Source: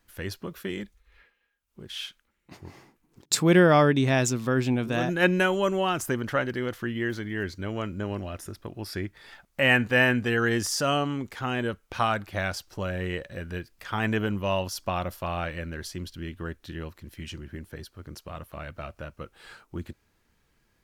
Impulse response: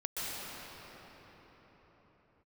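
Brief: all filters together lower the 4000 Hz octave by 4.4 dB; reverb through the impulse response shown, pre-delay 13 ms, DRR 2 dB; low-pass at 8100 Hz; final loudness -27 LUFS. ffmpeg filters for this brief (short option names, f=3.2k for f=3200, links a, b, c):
-filter_complex "[0:a]lowpass=8.1k,equalizer=f=4k:t=o:g=-6.5,asplit=2[a][b];[1:a]atrim=start_sample=2205,adelay=13[c];[b][c]afir=irnorm=-1:irlink=0,volume=-7.5dB[d];[a][d]amix=inputs=2:normalize=0,volume=-2dB"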